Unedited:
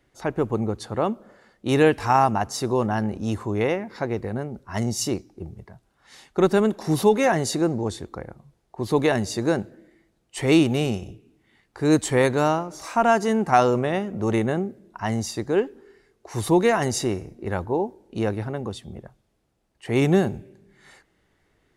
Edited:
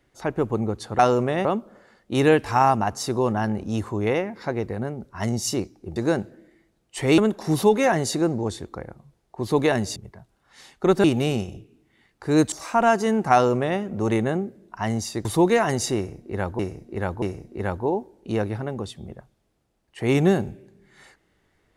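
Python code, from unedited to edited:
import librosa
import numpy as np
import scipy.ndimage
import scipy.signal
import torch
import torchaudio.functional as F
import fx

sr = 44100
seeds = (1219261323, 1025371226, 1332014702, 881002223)

y = fx.edit(x, sr, fx.swap(start_s=5.5, length_s=1.08, other_s=9.36, other_length_s=1.22),
    fx.cut(start_s=12.06, length_s=0.68),
    fx.duplicate(start_s=13.55, length_s=0.46, to_s=0.99),
    fx.cut(start_s=15.47, length_s=0.91),
    fx.repeat(start_s=17.09, length_s=0.63, count=3), tone=tone)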